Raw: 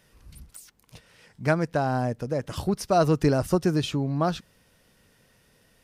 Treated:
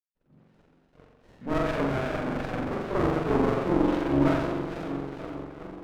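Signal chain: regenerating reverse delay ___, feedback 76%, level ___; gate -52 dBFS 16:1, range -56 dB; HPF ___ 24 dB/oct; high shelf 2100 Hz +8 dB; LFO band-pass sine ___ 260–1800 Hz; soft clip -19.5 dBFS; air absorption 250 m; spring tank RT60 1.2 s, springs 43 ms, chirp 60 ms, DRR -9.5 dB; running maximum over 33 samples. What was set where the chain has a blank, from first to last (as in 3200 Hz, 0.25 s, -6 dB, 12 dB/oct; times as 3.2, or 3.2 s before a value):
0.225 s, -8.5 dB, 120 Hz, 2.6 Hz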